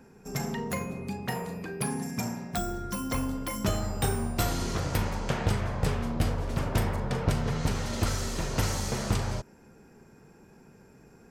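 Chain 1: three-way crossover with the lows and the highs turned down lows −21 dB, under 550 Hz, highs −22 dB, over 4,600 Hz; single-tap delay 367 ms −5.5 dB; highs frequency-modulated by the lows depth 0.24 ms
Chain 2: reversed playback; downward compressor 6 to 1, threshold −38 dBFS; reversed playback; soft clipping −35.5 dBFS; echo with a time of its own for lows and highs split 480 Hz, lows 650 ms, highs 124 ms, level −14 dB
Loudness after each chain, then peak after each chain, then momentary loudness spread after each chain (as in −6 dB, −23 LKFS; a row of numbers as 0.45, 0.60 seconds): −37.5, −44.0 LKFS; −19.5, −33.5 dBFS; 5, 11 LU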